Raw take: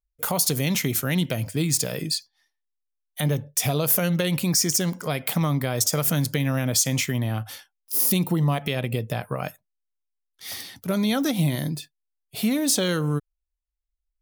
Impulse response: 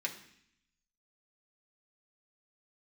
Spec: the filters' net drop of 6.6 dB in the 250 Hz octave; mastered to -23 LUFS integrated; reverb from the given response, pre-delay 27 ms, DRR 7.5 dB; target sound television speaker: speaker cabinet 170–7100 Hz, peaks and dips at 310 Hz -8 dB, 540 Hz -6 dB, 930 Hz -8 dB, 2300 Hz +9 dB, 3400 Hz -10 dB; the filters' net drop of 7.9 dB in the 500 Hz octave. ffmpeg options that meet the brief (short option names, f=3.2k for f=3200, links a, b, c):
-filter_complex "[0:a]equalizer=f=250:t=o:g=-4,equalizer=f=500:t=o:g=-3.5,asplit=2[a][b];[1:a]atrim=start_sample=2205,adelay=27[c];[b][c]afir=irnorm=-1:irlink=0,volume=-10dB[d];[a][d]amix=inputs=2:normalize=0,highpass=f=170:w=0.5412,highpass=f=170:w=1.3066,equalizer=f=310:t=q:w=4:g=-8,equalizer=f=540:t=q:w=4:g=-6,equalizer=f=930:t=q:w=4:g=-8,equalizer=f=2.3k:t=q:w=4:g=9,equalizer=f=3.4k:t=q:w=4:g=-10,lowpass=f=7.1k:w=0.5412,lowpass=f=7.1k:w=1.3066,volume=5dB"